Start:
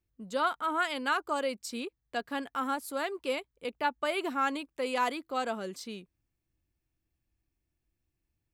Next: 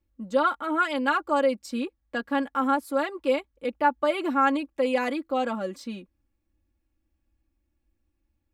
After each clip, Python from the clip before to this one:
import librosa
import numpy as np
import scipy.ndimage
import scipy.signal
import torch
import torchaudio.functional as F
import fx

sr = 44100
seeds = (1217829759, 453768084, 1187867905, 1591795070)

y = fx.high_shelf(x, sr, hz=2400.0, db=-11.0)
y = y + 0.88 * np.pad(y, (int(3.6 * sr / 1000.0), 0))[:len(y)]
y = y * 10.0 ** (5.0 / 20.0)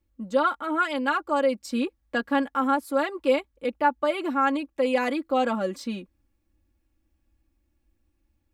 y = fx.rider(x, sr, range_db=3, speed_s=0.5)
y = y * 10.0 ** (1.0 / 20.0)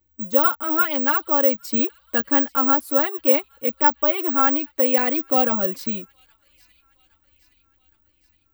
y = fx.echo_wet_highpass(x, sr, ms=816, feedback_pct=54, hz=3100.0, wet_db=-20)
y = (np.kron(y[::2], np.eye(2)[0]) * 2)[:len(y)]
y = y * 10.0 ** (2.0 / 20.0)